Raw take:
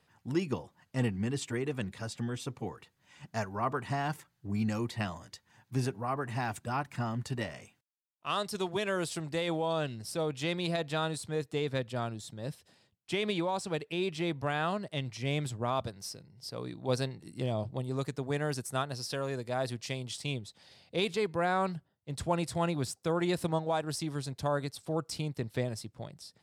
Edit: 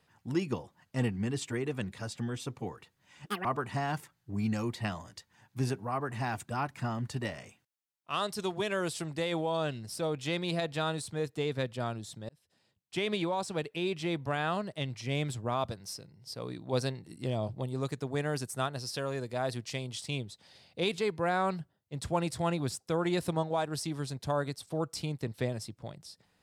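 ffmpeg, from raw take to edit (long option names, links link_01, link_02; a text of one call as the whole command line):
ffmpeg -i in.wav -filter_complex "[0:a]asplit=4[link_01][link_02][link_03][link_04];[link_01]atrim=end=3.264[link_05];[link_02]atrim=start=3.26:end=3.61,asetpts=PTS-STARTPTS,asetrate=81144,aresample=44100[link_06];[link_03]atrim=start=3.606:end=12.45,asetpts=PTS-STARTPTS,afade=type=out:start_time=8.84:duration=0.004:curve=hsin[link_07];[link_04]atrim=start=12.45,asetpts=PTS-STARTPTS,afade=type=in:duration=0.73[link_08];[link_05][link_06]acrossfade=duration=0.004:curve1=hsin:curve2=hsin[link_09];[link_07][link_08]concat=n=2:v=0:a=1[link_10];[link_09][link_10]acrossfade=duration=0.004:curve1=hsin:curve2=hsin" out.wav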